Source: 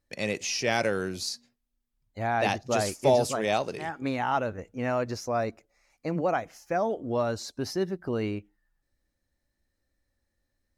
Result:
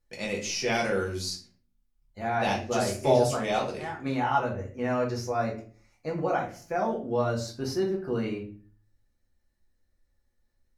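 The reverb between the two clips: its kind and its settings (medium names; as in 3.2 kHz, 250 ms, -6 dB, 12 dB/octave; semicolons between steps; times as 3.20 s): simulated room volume 30 m³, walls mixed, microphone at 0.76 m; trim -5 dB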